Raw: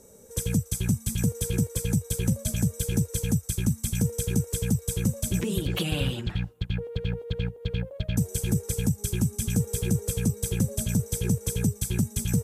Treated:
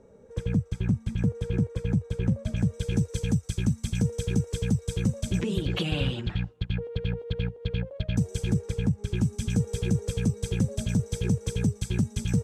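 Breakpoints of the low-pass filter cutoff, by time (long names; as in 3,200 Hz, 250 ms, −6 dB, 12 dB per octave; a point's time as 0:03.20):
0:02.39 2,100 Hz
0:03.03 5,000 Hz
0:08.45 5,000 Hz
0:08.99 2,300 Hz
0:09.26 5,100 Hz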